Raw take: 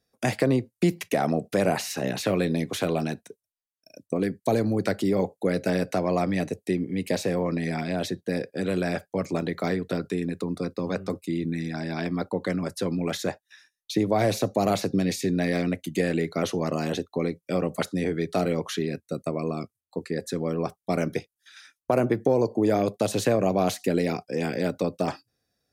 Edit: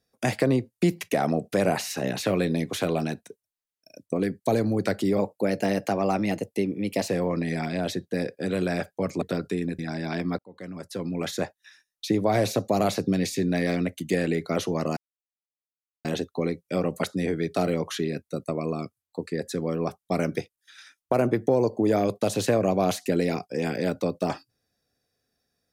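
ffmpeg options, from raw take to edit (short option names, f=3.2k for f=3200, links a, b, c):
-filter_complex "[0:a]asplit=7[a][b][c][d][e][f][g];[a]atrim=end=5.184[h];[b]atrim=start=5.18:end=7.24,asetpts=PTS-STARTPTS,asetrate=47628,aresample=44100[i];[c]atrim=start=7.236:end=9.372[j];[d]atrim=start=9.818:end=10.392[k];[e]atrim=start=11.648:end=12.25,asetpts=PTS-STARTPTS,afade=t=out:st=0.598:d=0.004:c=hsin[l];[f]atrim=start=12.25:end=16.83,asetpts=PTS-STARTPTS,afade=t=in:d=1,afade=t=out:st=4.576:d=0.004:c=hsin,apad=pad_dur=1.08[m];[g]atrim=start=16.83,asetpts=PTS-STARTPTS,afade=t=in:d=0.004:c=hsin[n];[h][i]acrossfade=d=0.004:c1=hsin:c2=hsin[o];[o][j]acrossfade=d=0.004:c1=hsin:c2=hsin[p];[p][k]acrossfade=d=0.004:c1=hsin:c2=hsin[q];[l][m][n]concat=n=3:v=0:a=1[r];[q][r]acrossfade=d=0.004:c1=hsin:c2=hsin"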